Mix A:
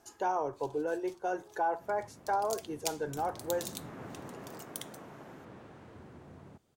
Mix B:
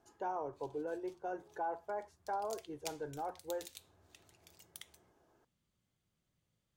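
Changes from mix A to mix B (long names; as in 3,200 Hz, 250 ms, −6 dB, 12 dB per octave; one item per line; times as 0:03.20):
speech −6.5 dB
second sound: muted
master: add high-shelf EQ 2,600 Hz −11 dB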